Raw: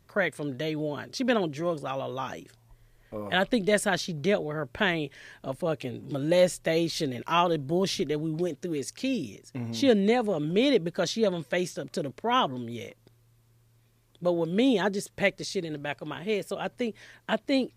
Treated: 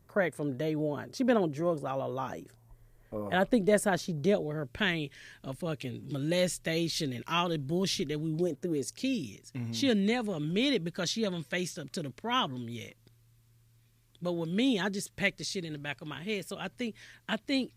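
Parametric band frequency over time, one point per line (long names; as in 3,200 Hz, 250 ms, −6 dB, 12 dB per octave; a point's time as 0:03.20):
parametric band −9.5 dB 2 octaves
0:04.02 3,300 Hz
0:04.85 690 Hz
0:08.25 690 Hz
0:08.61 4,300 Hz
0:09.21 590 Hz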